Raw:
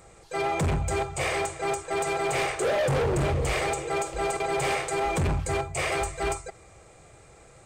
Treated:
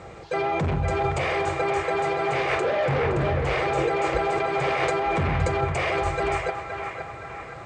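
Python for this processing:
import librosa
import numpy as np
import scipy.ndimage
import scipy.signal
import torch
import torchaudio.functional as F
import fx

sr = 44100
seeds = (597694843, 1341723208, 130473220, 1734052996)

p1 = scipy.signal.sosfilt(scipy.signal.butter(2, 66.0, 'highpass', fs=sr, output='sos'), x)
p2 = fx.high_shelf(p1, sr, hz=9000.0, db=-10.0)
p3 = fx.over_compress(p2, sr, threshold_db=-33.0, ratio=-0.5)
p4 = p2 + F.gain(torch.from_numpy(p3), 3.0).numpy()
p5 = fx.quant_dither(p4, sr, seeds[0], bits=10, dither='triangular')
p6 = fx.air_absorb(p5, sr, metres=140.0)
y = p6 + fx.echo_banded(p6, sr, ms=517, feedback_pct=60, hz=1400.0, wet_db=-4, dry=0)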